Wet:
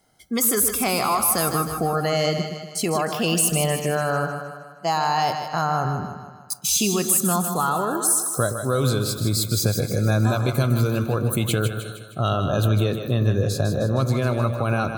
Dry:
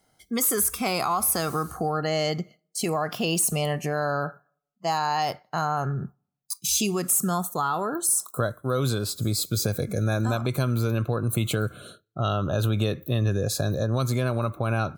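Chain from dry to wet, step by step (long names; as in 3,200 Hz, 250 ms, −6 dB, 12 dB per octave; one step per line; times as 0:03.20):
0:12.68–0:14.22: high-shelf EQ 4,600 Hz −8.5 dB
echo with a time of its own for lows and highs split 550 Hz, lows 119 ms, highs 155 ms, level −7.5 dB
level +3 dB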